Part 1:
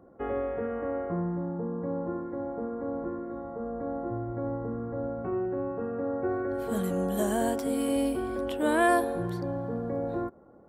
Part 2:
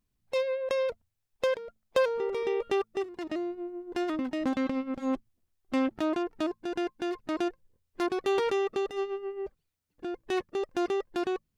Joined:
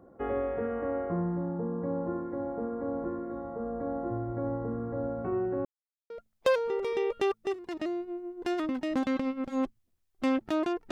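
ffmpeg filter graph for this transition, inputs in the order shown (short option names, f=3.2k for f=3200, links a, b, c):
-filter_complex "[0:a]apad=whole_dur=10.91,atrim=end=10.91,asplit=2[a][b];[a]atrim=end=5.65,asetpts=PTS-STARTPTS,afade=t=out:st=5.646:d=0.004:c=hsin[c];[b]atrim=start=5.65:end=6.1,asetpts=PTS-STARTPTS,volume=0[d];[1:a]atrim=start=1.6:end=6.41,asetpts=PTS-STARTPTS,afade=t=in:d=0.004:c=hsin[e];[c][d][e]concat=n=3:v=0:a=1"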